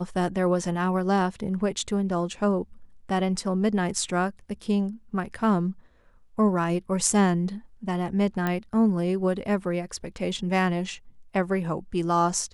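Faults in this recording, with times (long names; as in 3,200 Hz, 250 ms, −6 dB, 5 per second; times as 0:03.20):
0:08.47: click −14 dBFS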